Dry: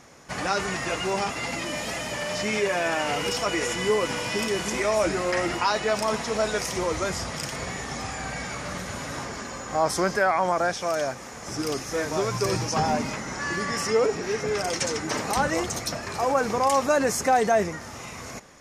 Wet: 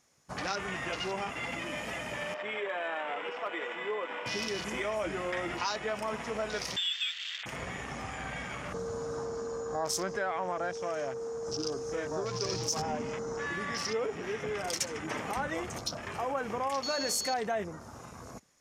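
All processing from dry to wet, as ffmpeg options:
-filter_complex "[0:a]asettb=1/sr,asplit=3[s0][s1][s2];[s0]atrim=end=2.344[s3];[s1]atrim=start=2.34:end=4.26,asetpts=PTS-STARTPTS,afade=t=in:d=0.004:c=qsin,afade=t=out:st=1.916:d=0.004:c=qsin,highpass=440,lowpass=2100,aeval=exprs='0.126*(abs(mod(val(0)/0.126+3,4)-2)-1)':c=same[s4];[s2]atrim=start=4.256[s5];[s3][s4]acrossfade=d=0.004:c1=hsin:c2=qsin[s6];[s6][s5]acrossfade=d=0.004:c1=qsin:c2=hsin,asettb=1/sr,asplit=3[s7][s8][s9];[s7]atrim=end=6.764[s10];[s8]atrim=start=6.76:end=7.46,asetpts=PTS-STARTPTS,afade=t=in:d=0.004:c=qsin,afade=t=out:st=0.696:d=0.004:c=qsin,highpass=f=240:w=0.5412,highpass=f=240:w=1.3066,lowpass=f=3300:t=q:w=0.5098,lowpass=f=3300:t=q:w=0.6013,lowpass=f=3300:t=q:w=0.9,lowpass=f=3300:t=q:w=2.563,afreqshift=-3900[s11];[s9]atrim=start=7.456[s12];[s10][s11]acrossfade=d=0.004:c1=hsin:c2=qsin[s13];[s13][s12]acrossfade=d=0.004:c1=qsin:c2=hsin,asettb=1/sr,asplit=3[s14][s15][s16];[s14]atrim=end=8.744[s17];[s15]atrim=start=8.74:end=13.46,asetpts=PTS-STARTPTS,afade=t=in:d=0.004:c=qsin,afade=t=out:st=4.716:d=0.004:c=qsin,equalizer=f=2600:t=o:w=1.5:g=-4,aeval=exprs='val(0)+0.0398*sin(2*PI*460*n/s)':c=same,lowpass=f=6500:t=q:w=1.6[s18];[s16]atrim=start=13.456[s19];[s17][s18]acrossfade=d=0.004:c1=hsin:c2=qsin[s20];[s20][s19]acrossfade=d=0.004:c1=qsin:c2=hsin,asettb=1/sr,asplit=3[s21][s22][s23];[s21]atrim=end=16.834[s24];[s22]atrim=start=16.83:end=17.34,asetpts=PTS-STARTPTS,afade=t=in:d=0.004:c=qsin,afade=t=out:st=0.506:d=0.004:c=qsin,equalizer=f=110:w=2.3:g=-10,bandreject=f=49.59:t=h:w=4,bandreject=f=99.18:t=h:w=4,bandreject=f=148.77:t=h:w=4,bandreject=f=198.36:t=h:w=4,bandreject=f=247.95:t=h:w=4,bandreject=f=297.54:t=h:w=4,bandreject=f=347.13:t=h:w=4,bandreject=f=396.72:t=h:w=4,bandreject=f=446.31:t=h:w=4,bandreject=f=495.9:t=h:w=4,bandreject=f=545.49:t=h:w=4,bandreject=f=595.08:t=h:w=4,bandreject=f=644.67:t=h:w=4,bandreject=f=694.26:t=h:w=4,bandreject=f=743.85:t=h:w=4,bandreject=f=793.44:t=h:w=4,bandreject=f=843.03:t=h:w=4,bandreject=f=892.62:t=h:w=4,bandreject=f=942.21:t=h:w=4,bandreject=f=991.8:t=h:w=4,bandreject=f=1041.39:t=h:w=4,bandreject=f=1090.98:t=h:w=4,bandreject=f=1140.57:t=h:w=4,bandreject=f=1190.16:t=h:w=4,bandreject=f=1239.75:t=h:w=4,bandreject=f=1289.34:t=h:w=4,bandreject=f=1338.93:t=h:w=4,bandreject=f=1388.52:t=h:w=4,bandreject=f=1438.11:t=h:w=4,bandreject=f=1487.7:t=h:w=4,aeval=exprs='val(0)+0.0316*sin(2*PI*4400*n/s)':c=same[s25];[s23]atrim=start=17.336[s26];[s24][s25]acrossfade=d=0.004:c1=hsin:c2=qsin[s27];[s27][s26]acrossfade=d=0.004:c1=qsin:c2=hsin,afwtdn=0.0178,highshelf=f=3500:g=12,acompressor=threshold=0.0447:ratio=2,volume=0.501"

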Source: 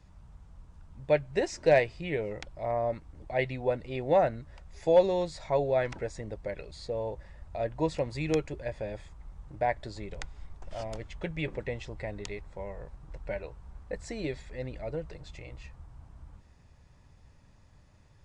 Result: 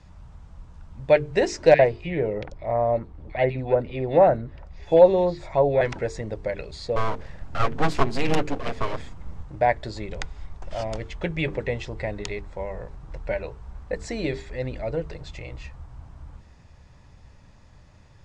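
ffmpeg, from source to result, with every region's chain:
-filter_complex "[0:a]asettb=1/sr,asplit=3[s0][s1][s2];[s0]atrim=end=1.744[s3];[s1]atrim=start=1.74:end=5.81,asetpts=PTS-STARTPTS,afade=t=in:d=0.004:c=qsin,afade=t=out:st=4.066:d=0.004:c=qsin,aemphasis=mode=reproduction:type=75kf,acrossover=split=1700|5600[s4][s5][s6];[s4]adelay=50[s7];[s6]adelay=90[s8];[s7][s5][s8]amix=inputs=3:normalize=0,atrim=end_sample=179487[s9];[s2]atrim=start=5.806[s10];[s3][s9]acrossfade=d=0.004:c1=hsin:c2=qsin[s11];[s11][s10]acrossfade=d=0.004:c1=qsin:c2=hsin,asettb=1/sr,asplit=3[s12][s13][s14];[s12]atrim=end=6.964[s15];[s13]atrim=start=6.96:end=9.43,asetpts=PTS-STARTPTS,afade=t=in:d=0.004:c=qsin,afade=t=out:st=2.466:d=0.004:c=qsin,lowshelf=f=410:g=3.5,aecho=1:1:7.4:0.84,atrim=end_sample=108927,aeval=exprs='abs(val(0))':c=same[s16];[s14]atrim=start=9.426[s17];[s15][s16]acrossfade=d=0.004:c1=hsin:c2=qsin[s18];[s18][s17]acrossfade=d=0.004:c1=qsin:c2=hsin,lowpass=7600,bandreject=f=50:t=h:w=6,bandreject=f=100:t=h:w=6,bandreject=f=150:t=h:w=6,bandreject=f=200:t=h:w=6,bandreject=f=250:t=h:w=6,bandreject=f=300:t=h:w=6,bandreject=f=350:t=h:w=6,bandreject=f=400:t=h:w=6,bandreject=f=450:t=h:w=6,volume=2.51"

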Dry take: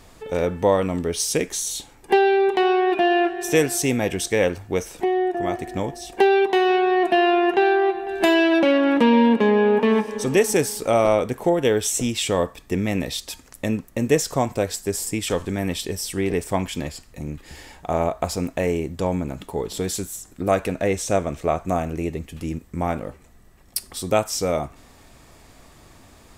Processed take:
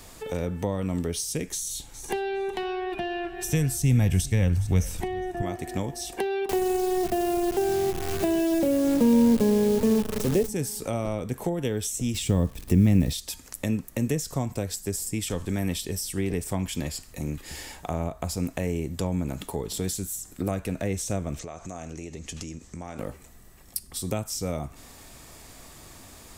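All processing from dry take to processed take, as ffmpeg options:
-filter_complex "[0:a]asettb=1/sr,asplit=3[s0][s1][s2];[s0]atrim=end=1.494[s3];[s1]atrim=start=1.49:end=5.42,asetpts=PTS-STARTPTS,afade=t=in:d=0.004:c=qsin,afade=t=out:st=3.926:d=0.004:c=qsin,asubboost=boost=10:cutoff=130,aecho=1:1:410|820:0.075|0.0202,atrim=end_sample=173313[s4];[s2]atrim=start=5.416[s5];[s3][s4]acrossfade=d=0.004:c1=hsin:c2=qsin[s6];[s6][s5]acrossfade=d=0.004:c1=qsin:c2=hsin,asettb=1/sr,asplit=3[s7][s8][s9];[s7]atrim=end=6.494[s10];[s8]atrim=start=6.49:end=10.49,asetpts=PTS-STARTPTS,afade=t=in:d=0.004:c=qsin,afade=t=out:st=3.996:d=0.004:c=qsin,equalizer=f=550:t=o:w=1.4:g=13.5,acrusher=bits=4:dc=4:mix=0:aa=0.000001[s11];[s9]atrim=start=10.486[s12];[s10][s11]acrossfade=d=0.004:c1=hsin:c2=qsin[s13];[s13][s12]acrossfade=d=0.004:c1=qsin:c2=hsin,asettb=1/sr,asplit=3[s14][s15][s16];[s14]atrim=end=12.144[s17];[s15]atrim=start=12.14:end=13.13,asetpts=PTS-STARTPTS,afade=t=in:d=0.004:c=qsin,afade=t=out:st=0.986:d=0.004:c=qsin,lowshelf=f=370:g=10,acrusher=bits=8:dc=4:mix=0:aa=0.000001[s18];[s16]atrim=start=13.126[s19];[s17][s18]acrossfade=d=0.004:c1=hsin:c2=qsin[s20];[s20][s19]acrossfade=d=0.004:c1=qsin:c2=hsin,asettb=1/sr,asplit=3[s21][s22][s23];[s21]atrim=end=21.394[s24];[s22]atrim=start=21.39:end=22.99,asetpts=PTS-STARTPTS,afade=t=in:d=0.004:c=qsin,afade=t=out:st=1.596:d=0.004:c=qsin,lowpass=f=6500:t=q:w=2.9,acompressor=threshold=0.02:ratio=10:attack=3.2:release=140:knee=1:detection=peak[s25];[s23]atrim=start=22.986[s26];[s24][s25]acrossfade=d=0.004:c1=hsin:c2=qsin[s27];[s27][s26]acrossfade=d=0.004:c1=qsin:c2=hsin,highshelf=f=4900:g=10,acrossover=split=230[s28][s29];[s29]acompressor=threshold=0.0282:ratio=5[s30];[s28][s30]amix=inputs=2:normalize=0"

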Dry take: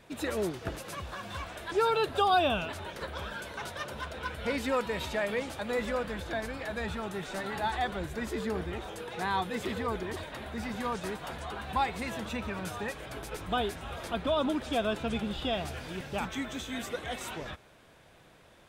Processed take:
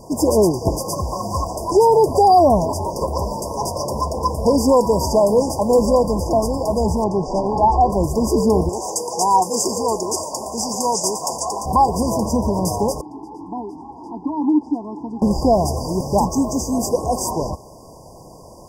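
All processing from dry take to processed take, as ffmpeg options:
-filter_complex "[0:a]asettb=1/sr,asplit=3[s0][s1][s2];[s0]atrim=end=7.044[s3];[s1]atrim=start=7.04:end=7.9,asetpts=PTS-STARTPTS,afade=t=in:d=0.004:c=qsin,afade=t=out:st=0.856:d=0.004:c=qsin,lowpass=3700,asubboost=boost=11:cutoff=57[s4];[s2]atrim=start=7.896[s5];[s3][s4]acrossfade=d=0.004:c1=hsin:c2=qsin[s6];[s6][s5]acrossfade=d=0.004:c1=qsin:c2=hsin,asettb=1/sr,asplit=3[s7][s8][s9];[s7]atrim=end=8.694[s10];[s8]atrim=start=8.69:end=11.66,asetpts=PTS-STARTPTS,afade=t=in:d=0.004:c=qsin,afade=t=out:st=2.966:d=0.004:c=qsin,highpass=f=590:p=1,equalizer=f=7000:t=o:w=1:g=12[s11];[s9]atrim=start=11.656[s12];[s10][s11]acrossfade=d=0.004:c1=hsin:c2=qsin[s13];[s13][s12]acrossfade=d=0.004:c1=qsin:c2=hsin,asettb=1/sr,asplit=3[s14][s15][s16];[s14]atrim=end=13.014[s17];[s15]atrim=start=13.01:end=15.22,asetpts=PTS-STARTPTS,afade=t=in:d=0.004:c=qsin,afade=t=out:st=2.206:d=0.004:c=qsin,acompressor=mode=upward:threshold=0.0224:ratio=2.5:attack=3.2:release=140:knee=2.83:detection=peak,asplit=3[s18][s19][s20];[s18]bandpass=f=300:t=q:w=8,volume=1[s21];[s19]bandpass=f=870:t=q:w=8,volume=0.501[s22];[s20]bandpass=f=2240:t=q:w=8,volume=0.355[s23];[s21][s22][s23]amix=inputs=3:normalize=0[s24];[s16]atrim=start=15.216[s25];[s17][s24]acrossfade=d=0.004:c1=hsin:c2=qsin[s26];[s26][s25]acrossfade=d=0.004:c1=qsin:c2=hsin,afftfilt=real='re*(1-between(b*sr/4096,1100,4700))':imag='im*(1-between(b*sr/4096,1100,4700))':win_size=4096:overlap=0.75,equalizer=f=2800:t=o:w=1.8:g=6,alimiter=level_in=12.6:limit=0.891:release=50:level=0:latency=1,volume=0.596"

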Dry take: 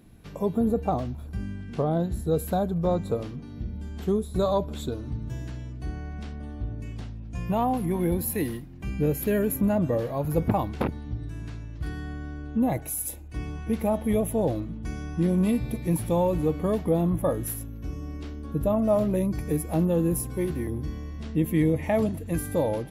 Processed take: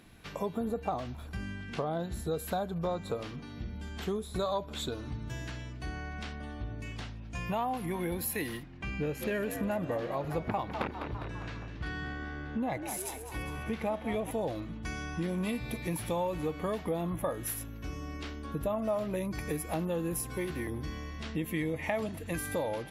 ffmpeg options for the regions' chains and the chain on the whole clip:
-filter_complex "[0:a]asettb=1/sr,asplit=3[s0][s1][s2];[s0]atrim=end=8.634[s3];[s1]atrim=start=8.63:end=14.31,asetpts=PTS-STARTPTS,afade=t=in:d=0.004:c=qsin,afade=t=out:st=5.676:d=0.004:c=qsin,adynamicsmooth=sensitivity=7.5:basefreq=5500,asplit=6[s4][s5][s6][s7][s8][s9];[s5]adelay=202,afreqshift=71,volume=0.237[s10];[s6]adelay=404,afreqshift=142,volume=0.123[s11];[s7]adelay=606,afreqshift=213,volume=0.0638[s12];[s8]adelay=808,afreqshift=284,volume=0.0335[s13];[s9]adelay=1010,afreqshift=355,volume=0.0174[s14];[s4][s10][s11][s12][s13][s14]amix=inputs=6:normalize=0,atrim=end_sample=250488[s15];[s2]atrim=start=14.306[s16];[s3][s15]acrossfade=d=0.004:c1=hsin:c2=qsin[s17];[s17][s16]acrossfade=d=0.004:c1=qsin:c2=hsin,lowpass=f=3000:p=1,tiltshelf=f=780:g=-8.5,acompressor=threshold=0.0178:ratio=2.5,volume=1.33"

